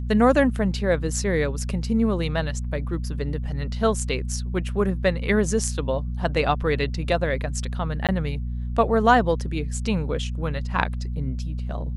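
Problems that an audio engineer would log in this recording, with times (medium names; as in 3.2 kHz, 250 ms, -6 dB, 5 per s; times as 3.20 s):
hum 60 Hz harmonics 4 -28 dBFS
8.07–8.09 s: dropout 17 ms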